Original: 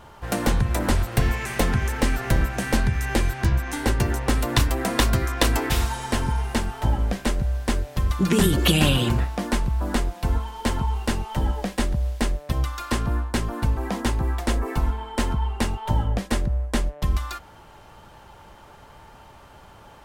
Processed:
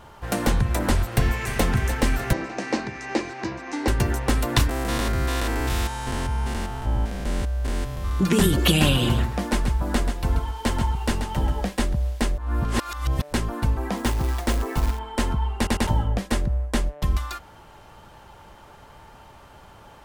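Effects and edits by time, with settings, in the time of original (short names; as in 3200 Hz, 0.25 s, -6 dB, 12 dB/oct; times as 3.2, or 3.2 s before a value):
1.04–1.64 echo throw 0.3 s, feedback 65%, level -11 dB
2.33–3.88 speaker cabinet 280–6200 Hz, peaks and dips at 310 Hz +7 dB, 1500 Hz -6 dB, 3300 Hz -8 dB
4.69–8.2 stepped spectrum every 0.2 s
8.89–11.69 echo 0.134 s -8 dB
12.38–13.33 reverse
13.97–14.99 short-mantissa float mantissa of 2-bit
15.57 stutter in place 0.10 s, 3 plays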